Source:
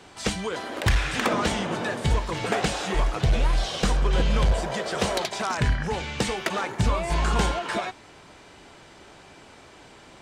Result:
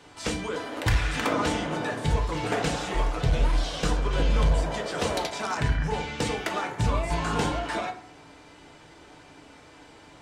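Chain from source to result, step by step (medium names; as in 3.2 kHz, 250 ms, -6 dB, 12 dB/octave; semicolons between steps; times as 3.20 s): FDN reverb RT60 0.5 s, low-frequency decay 1.25×, high-frequency decay 0.45×, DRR 2.5 dB; trim -4 dB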